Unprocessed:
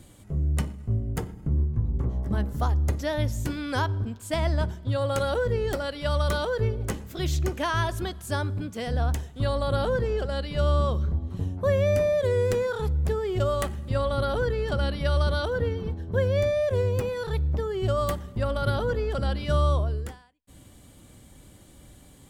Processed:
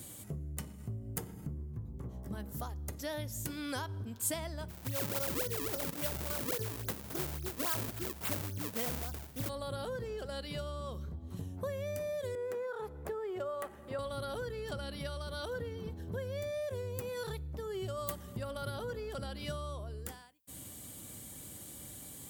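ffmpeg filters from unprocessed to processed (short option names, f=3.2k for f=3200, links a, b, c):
-filter_complex "[0:a]asplit=3[a][b][c];[a]afade=t=out:st=4.68:d=0.02[d];[b]acrusher=samples=35:mix=1:aa=0.000001:lfo=1:lforange=56:lforate=3.6,afade=t=in:st=4.68:d=0.02,afade=t=out:st=9.48:d=0.02[e];[c]afade=t=in:st=9.48:d=0.02[f];[d][e][f]amix=inputs=3:normalize=0,asettb=1/sr,asplit=3[g][h][i];[g]atrim=end=12.354[j];[h]atrim=start=12.35:end=13.99,asetpts=PTS-STARTPTS,afade=t=in:d=0.004:c=qsin,afade=t=out:st=1.636:d=0.004:c=qsin,acrossover=split=320 2000:gain=0.126 1 0.141[k][l][m];[k][l][m]amix=inputs=3:normalize=0[n];[i]atrim=start=13.986[o];[j][n]acrossfade=d=0.004:c1=hsin:c2=qsin[p];[p][o]acrossfade=d=0.004:c1=qsin:c2=hsin,acompressor=threshold=-36dB:ratio=6,highpass=86,aemphasis=mode=production:type=50fm"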